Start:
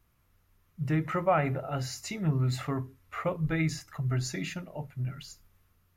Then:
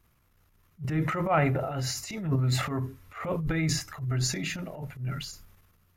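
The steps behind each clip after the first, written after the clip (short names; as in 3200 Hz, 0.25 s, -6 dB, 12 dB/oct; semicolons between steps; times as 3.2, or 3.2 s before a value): transient shaper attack -11 dB, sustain +8 dB; gain +2 dB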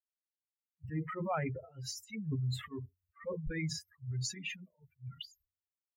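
per-bin expansion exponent 3; bell 12000 Hz -11 dB 0.57 oct; compressor 2.5:1, threshold -37 dBFS, peak gain reduction 9.5 dB; gain +1.5 dB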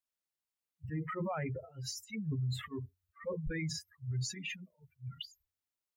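limiter -31 dBFS, peak gain reduction 7.5 dB; gain +1.5 dB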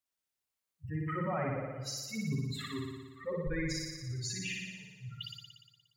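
flutter echo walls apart 10.1 m, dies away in 1.3 s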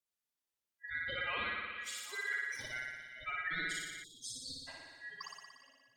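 ring modulator 1800 Hz; delay with a stepping band-pass 0.394 s, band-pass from 2600 Hz, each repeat -1.4 oct, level -10.5 dB; spectral delete 4.03–4.67, 530–3200 Hz; gain -1 dB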